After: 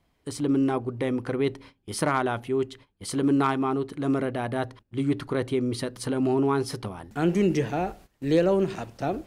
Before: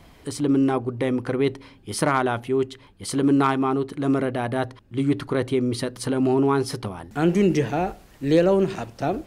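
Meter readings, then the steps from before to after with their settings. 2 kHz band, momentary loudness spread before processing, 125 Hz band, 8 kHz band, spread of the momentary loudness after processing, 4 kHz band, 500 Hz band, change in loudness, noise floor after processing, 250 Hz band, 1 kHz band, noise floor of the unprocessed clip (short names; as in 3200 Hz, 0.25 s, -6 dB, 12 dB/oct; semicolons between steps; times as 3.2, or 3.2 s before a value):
-3.5 dB, 10 LU, -3.5 dB, -3.5 dB, 10 LU, -3.5 dB, -3.5 dB, -3.5 dB, -70 dBFS, -3.5 dB, -3.5 dB, -51 dBFS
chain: gate -43 dBFS, range -16 dB; gain -3.5 dB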